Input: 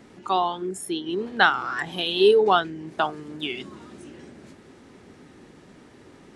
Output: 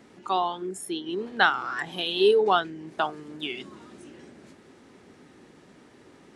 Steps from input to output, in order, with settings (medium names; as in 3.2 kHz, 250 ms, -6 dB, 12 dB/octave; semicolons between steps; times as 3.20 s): bass shelf 110 Hz -8 dB; trim -2.5 dB